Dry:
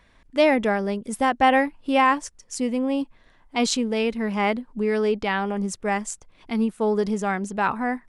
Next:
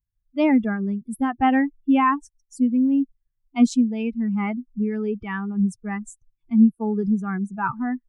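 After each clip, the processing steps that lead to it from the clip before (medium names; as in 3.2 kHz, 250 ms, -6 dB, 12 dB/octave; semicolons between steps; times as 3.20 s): expander on every frequency bin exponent 2; graphic EQ 125/250/500/1000/4000/8000 Hz +8/+11/-10/+4/-10/-4 dB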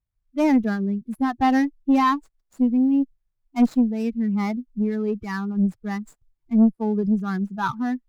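median filter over 15 samples; valve stage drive 11 dB, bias 0.25; trim +1.5 dB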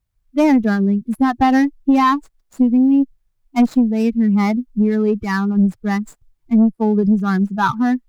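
compression 4:1, threshold -20 dBFS, peak gain reduction 7 dB; trim +9 dB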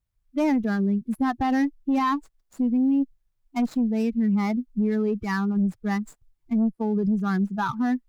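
peak limiter -11 dBFS, peak gain reduction 5.5 dB; trim -6 dB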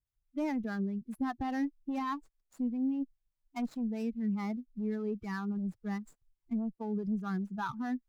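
harmonic tremolo 4.9 Hz, depth 50%, crossover 510 Hz; trim -8.5 dB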